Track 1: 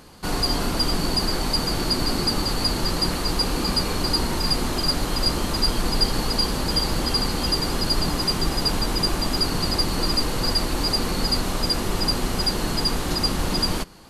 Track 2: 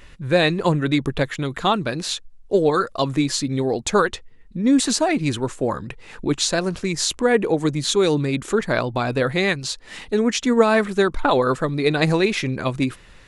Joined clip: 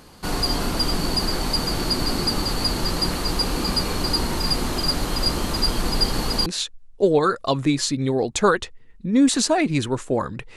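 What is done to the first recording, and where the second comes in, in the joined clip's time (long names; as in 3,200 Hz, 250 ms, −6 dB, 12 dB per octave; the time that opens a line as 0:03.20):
track 1
0:06.46: continue with track 2 from 0:01.97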